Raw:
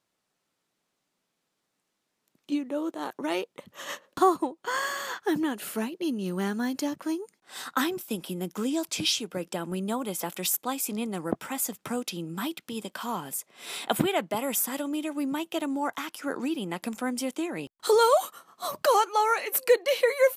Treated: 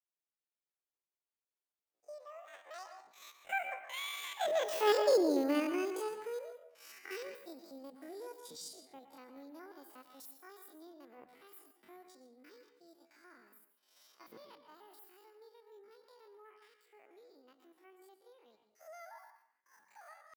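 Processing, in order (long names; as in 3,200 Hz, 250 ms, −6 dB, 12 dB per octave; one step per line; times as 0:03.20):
spectrum averaged block by block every 50 ms
source passing by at 0:05.02, 55 m/s, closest 10 metres
on a send at −7.5 dB: convolution reverb RT60 0.65 s, pre-delay 103 ms
on the sum: pitch shifter +9.5 semitones
level +5.5 dB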